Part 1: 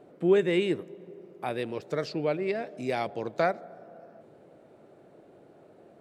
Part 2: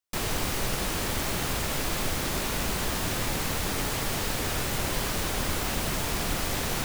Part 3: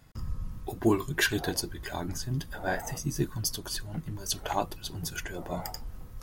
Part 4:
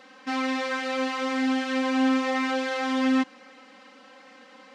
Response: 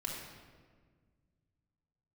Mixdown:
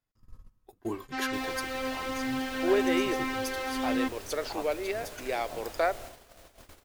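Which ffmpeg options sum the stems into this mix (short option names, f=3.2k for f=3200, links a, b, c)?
-filter_complex "[0:a]highpass=380,adelay=2400,volume=-0.5dB[a];[1:a]adelay=1200,volume=-17dB[b];[2:a]equalizer=f=61:w=1.9:g=-11.5,volume=-9dB[c];[3:a]adelay=850,volume=-5.5dB[d];[a][b][c][d]amix=inputs=4:normalize=0,agate=range=-18dB:threshold=-42dB:ratio=16:detection=peak,equalizer=f=160:t=o:w=0.63:g=-9.5"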